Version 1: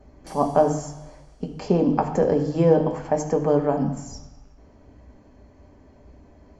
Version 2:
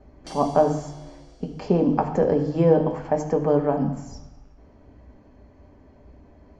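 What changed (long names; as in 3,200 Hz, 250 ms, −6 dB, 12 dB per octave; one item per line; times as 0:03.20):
background +10.5 dB
master: add high-frequency loss of the air 99 metres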